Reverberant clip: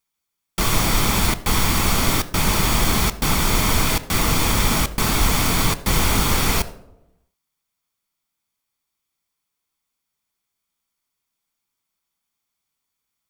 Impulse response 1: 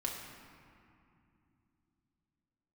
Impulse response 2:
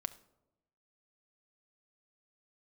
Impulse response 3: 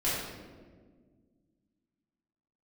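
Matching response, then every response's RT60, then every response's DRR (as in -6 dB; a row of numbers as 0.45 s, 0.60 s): 2; 2.6 s, 0.95 s, 1.6 s; -2.0 dB, 12.5 dB, -11.0 dB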